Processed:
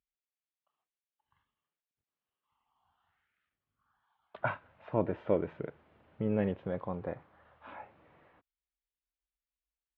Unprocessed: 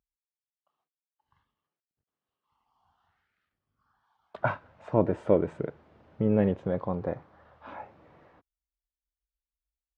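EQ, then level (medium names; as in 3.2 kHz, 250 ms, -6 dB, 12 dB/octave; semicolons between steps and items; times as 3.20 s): low-pass 3.2 kHz 24 dB/octave; treble shelf 2.1 kHz +11 dB; -7.0 dB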